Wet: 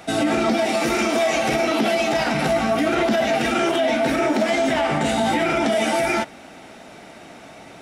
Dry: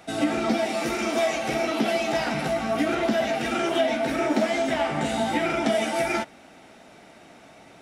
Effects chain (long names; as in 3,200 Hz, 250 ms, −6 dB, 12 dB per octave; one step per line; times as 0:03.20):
brickwall limiter −19 dBFS, peak gain reduction 8.5 dB
level +7.5 dB